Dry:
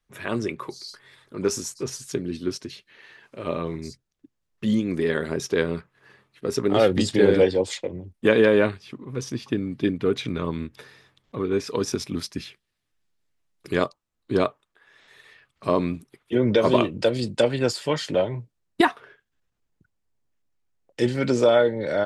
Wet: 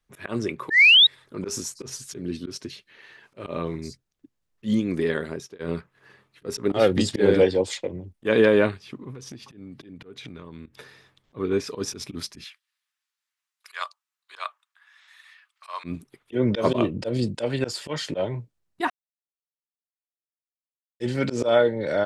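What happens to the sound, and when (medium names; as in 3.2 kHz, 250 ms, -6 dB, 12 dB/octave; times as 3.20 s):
0.70–1.07 s: painted sound rise 1.7–3.9 kHz -13 dBFS
4.87–5.59 s: fade out equal-power
9.11–10.66 s: compression 20:1, threshold -35 dBFS
12.44–15.84 s: inverse Chebyshev high-pass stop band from 170 Hz, stop band 80 dB
16.73–17.35 s: tilt shelf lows +3.5 dB, about 830 Hz
18.90–21.00 s: mute
whole clip: slow attack 103 ms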